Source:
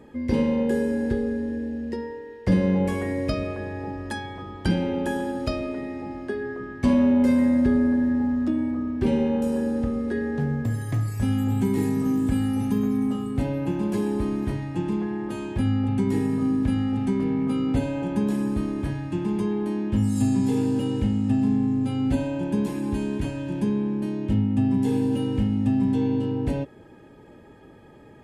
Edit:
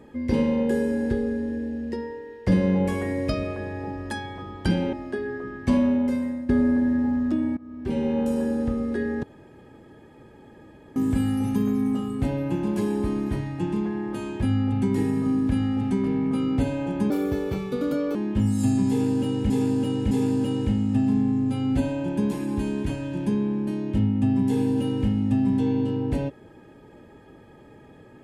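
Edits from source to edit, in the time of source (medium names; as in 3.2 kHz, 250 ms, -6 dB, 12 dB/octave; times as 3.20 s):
4.93–6.09 s: delete
6.80–7.65 s: fade out, to -15.5 dB
8.73–9.37 s: fade in, from -22.5 dB
10.39–12.12 s: room tone
18.26–19.72 s: speed 139%
20.46–21.07 s: loop, 3 plays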